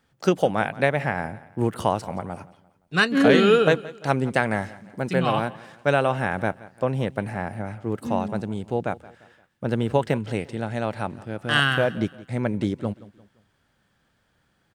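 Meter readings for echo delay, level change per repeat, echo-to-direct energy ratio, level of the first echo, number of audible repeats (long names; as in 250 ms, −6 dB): 173 ms, −7.5 dB, −18.5 dB, −19.5 dB, 3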